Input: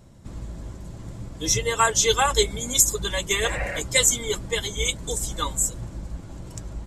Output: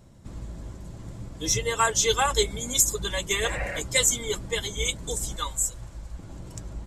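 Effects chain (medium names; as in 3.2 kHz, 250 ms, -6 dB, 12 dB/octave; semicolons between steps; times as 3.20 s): 5.36–6.19 s: peaking EQ 230 Hz -10.5 dB 2.2 oct; in parallel at -7 dB: saturation -12 dBFS, distortion -17 dB; on the sum: trim -5.5 dB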